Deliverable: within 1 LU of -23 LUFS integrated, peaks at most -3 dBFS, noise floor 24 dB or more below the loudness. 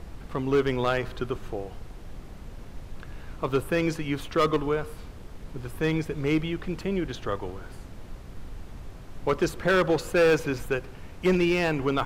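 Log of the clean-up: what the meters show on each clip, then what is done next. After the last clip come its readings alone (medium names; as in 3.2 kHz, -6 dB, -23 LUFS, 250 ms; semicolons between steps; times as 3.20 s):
clipped samples 0.9%; clipping level -16.0 dBFS; noise floor -44 dBFS; noise floor target -51 dBFS; loudness -27.0 LUFS; peak level -16.0 dBFS; loudness target -23.0 LUFS
-> clip repair -16 dBFS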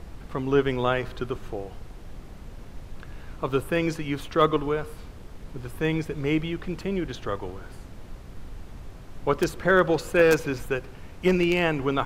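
clipped samples 0.0%; noise floor -44 dBFS; noise floor target -50 dBFS
-> noise print and reduce 6 dB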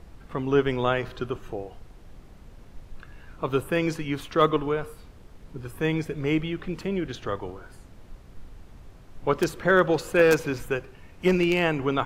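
noise floor -49 dBFS; noise floor target -50 dBFS
-> noise print and reduce 6 dB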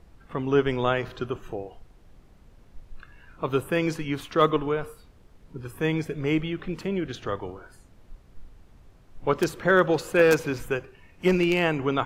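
noise floor -55 dBFS; loudness -25.5 LUFS; peak level -7.0 dBFS; loudness target -23.0 LUFS
-> trim +2.5 dB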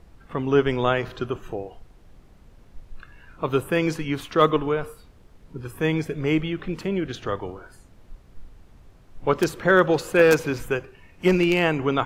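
loudness -23.0 LUFS; peak level -4.5 dBFS; noise floor -53 dBFS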